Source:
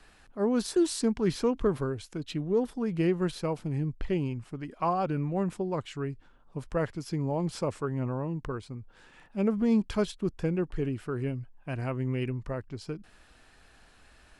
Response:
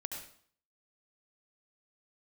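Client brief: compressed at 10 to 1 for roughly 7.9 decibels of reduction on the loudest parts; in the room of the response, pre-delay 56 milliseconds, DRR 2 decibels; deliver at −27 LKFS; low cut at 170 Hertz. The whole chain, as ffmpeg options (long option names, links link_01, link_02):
-filter_complex "[0:a]highpass=170,acompressor=threshold=-29dB:ratio=10,asplit=2[link_01][link_02];[1:a]atrim=start_sample=2205,adelay=56[link_03];[link_02][link_03]afir=irnorm=-1:irlink=0,volume=-1.5dB[link_04];[link_01][link_04]amix=inputs=2:normalize=0,volume=7.5dB"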